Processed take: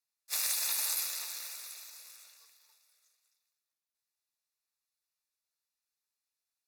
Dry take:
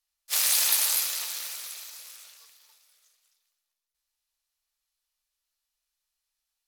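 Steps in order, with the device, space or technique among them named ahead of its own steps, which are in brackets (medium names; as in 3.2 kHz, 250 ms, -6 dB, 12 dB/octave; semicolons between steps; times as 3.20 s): PA system with an anti-feedback notch (high-pass 170 Hz 6 dB/octave; Butterworth band-stop 3.1 kHz, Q 5.3; peak limiter -13 dBFS, peak gain reduction 5.5 dB); trim -6.5 dB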